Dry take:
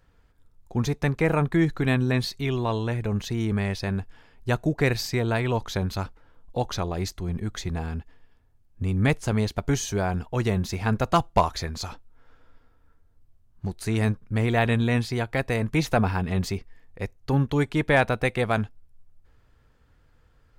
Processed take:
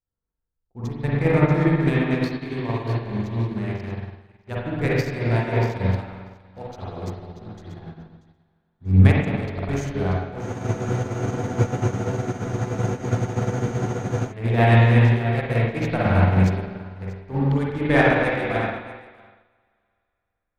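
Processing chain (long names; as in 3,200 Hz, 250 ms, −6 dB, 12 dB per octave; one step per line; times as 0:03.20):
adaptive Wiener filter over 15 samples
on a send: feedback echo with a high-pass in the loop 636 ms, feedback 18%, high-pass 470 Hz, level −9 dB
on the sum: spring reverb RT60 2.5 s, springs 43/53 ms, chirp 35 ms, DRR −7 dB
in parallel at −8 dB: soft clipping −14.5 dBFS, distortion −12 dB
on the sum: frozen spectrum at 0:10.44, 3.87 s
expander for the loud parts 2.5 to 1, over −31 dBFS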